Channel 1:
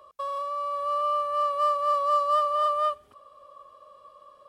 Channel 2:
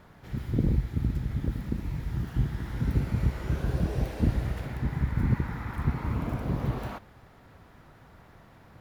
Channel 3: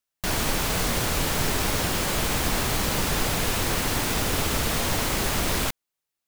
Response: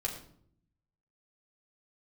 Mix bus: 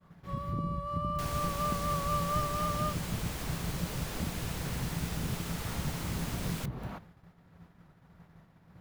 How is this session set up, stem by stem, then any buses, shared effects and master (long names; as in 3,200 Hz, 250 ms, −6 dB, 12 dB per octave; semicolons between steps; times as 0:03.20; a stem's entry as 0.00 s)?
−10.0 dB, 0.00 s, no send, level that may rise only so fast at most 470 dB per second
−4.5 dB, 0.00 s, no send, parametric band 170 Hz +14 dB 0.23 octaves; downward compressor 6 to 1, threshold −30 dBFS, peak gain reduction 14 dB
−15.0 dB, 0.95 s, no send, no processing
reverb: not used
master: parametric band 110 Hz +2.5 dB 2 octaves; downward expander −48 dBFS